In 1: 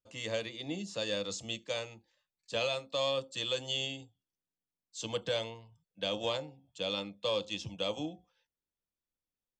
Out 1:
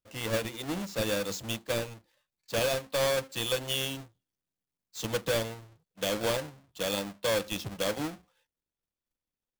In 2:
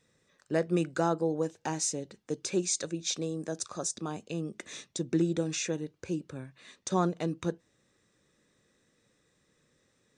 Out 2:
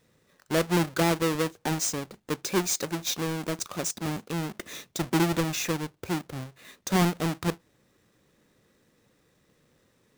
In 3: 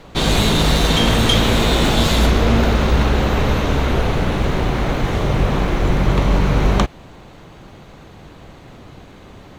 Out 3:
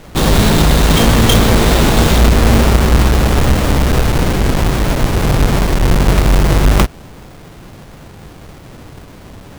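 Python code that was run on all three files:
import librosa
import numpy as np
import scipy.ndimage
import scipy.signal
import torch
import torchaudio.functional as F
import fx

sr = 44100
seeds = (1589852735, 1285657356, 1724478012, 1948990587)

y = fx.halfwave_hold(x, sr)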